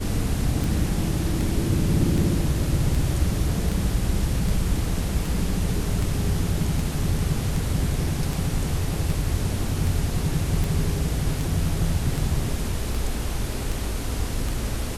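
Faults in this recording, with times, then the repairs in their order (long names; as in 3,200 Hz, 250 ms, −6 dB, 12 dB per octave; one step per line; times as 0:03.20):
scratch tick 78 rpm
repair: click removal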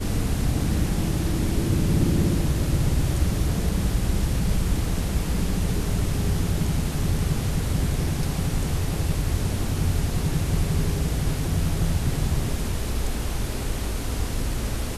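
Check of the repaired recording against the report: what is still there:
none of them is left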